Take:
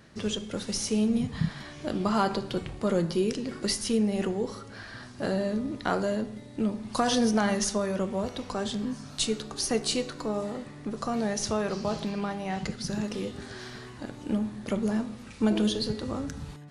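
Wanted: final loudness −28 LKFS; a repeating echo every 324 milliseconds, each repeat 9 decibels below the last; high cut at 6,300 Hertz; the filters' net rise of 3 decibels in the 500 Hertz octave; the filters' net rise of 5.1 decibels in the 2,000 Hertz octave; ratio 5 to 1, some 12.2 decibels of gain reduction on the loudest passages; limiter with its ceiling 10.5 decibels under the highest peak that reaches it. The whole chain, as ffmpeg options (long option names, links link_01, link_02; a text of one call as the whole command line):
ffmpeg -i in.wav -af "lowpass=6300,equalizer=frequency=500:width_type=o:gain=3.5,equalizer=frequency=2000:width_type=o:gain=6.5,acompressor=threshold=-33dB:ratio=5,alimiter=level_in=3.5dB:limit=-24dB:level=0:latency=1,volume=-3.5dB,aecho=1:1:324|648|972|1296:0.355|0.124|0.0435|0.0152,volume=9.5dB" out.wav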